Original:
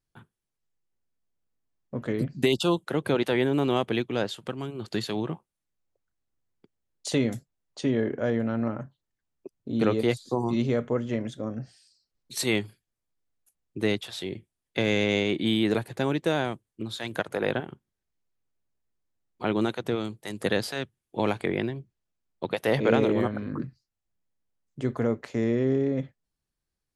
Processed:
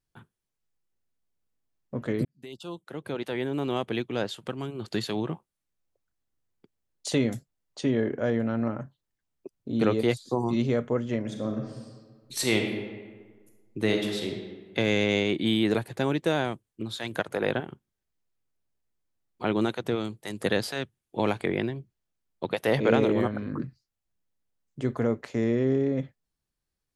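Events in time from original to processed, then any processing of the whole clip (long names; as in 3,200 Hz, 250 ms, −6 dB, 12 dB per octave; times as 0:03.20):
0:02.25–0:04.60: fade in
0:11.20–0:14.30: thrown reverb, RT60 1.5 s, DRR 2.5 dB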